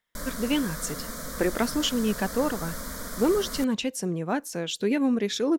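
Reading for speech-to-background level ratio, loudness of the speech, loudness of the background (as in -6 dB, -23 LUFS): 8.5 dB, -27.5 LUFS, -36.0 LUFS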